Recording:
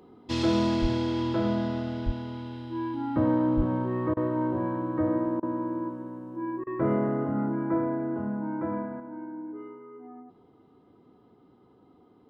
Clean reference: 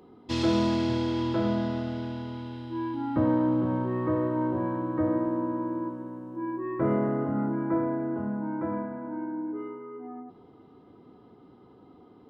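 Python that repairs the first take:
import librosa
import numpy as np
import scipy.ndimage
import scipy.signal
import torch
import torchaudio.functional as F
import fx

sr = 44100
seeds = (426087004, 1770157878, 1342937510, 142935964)

y = fx.highpass(x, sr, hz=140.0, slope=24, at=(0.81, 0.93), fade=0.02)
y = fx.highpass(y, sr, hz=140.0, slope=24, at=(2.05, 2.17), fade=0.02)
y = fx.highpass(y, sr, hz=140.0, slope=24, at=(3.56, 3.68), fade=0.02)
y = fx.fix_interpolate(y, sr, at_s=(4.14, 5.4, 6.64), length_ms=27.0)
y = fx.gain(y, sr, db=fx.steps((0.0, 0.0), (9.0, 5.0)))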